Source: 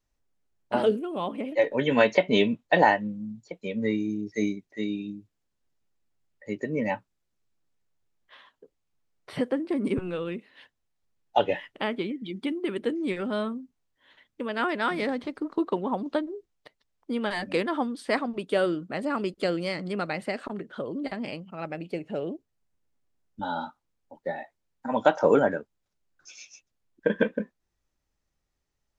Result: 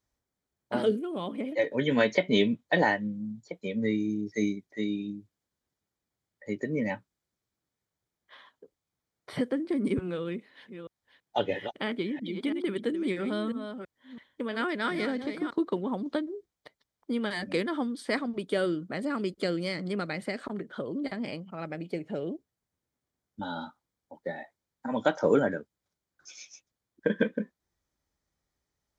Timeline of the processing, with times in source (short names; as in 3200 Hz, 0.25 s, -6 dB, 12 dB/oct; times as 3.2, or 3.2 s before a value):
10.21–15.52 reverse delay 0.331 s, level -9.5 dB
whole clip: HPF 53 Hz; notch 2700 Hz, Q 7.1; dynamic EQ 840 Hz, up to -8 dB, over -39 dBFS, Q 1